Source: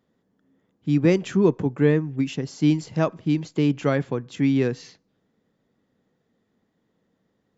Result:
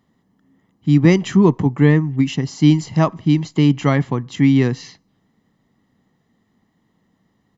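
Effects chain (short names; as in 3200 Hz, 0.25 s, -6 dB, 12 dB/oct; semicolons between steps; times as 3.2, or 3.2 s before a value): comb 1 ms, depth 55%; gain +6 dB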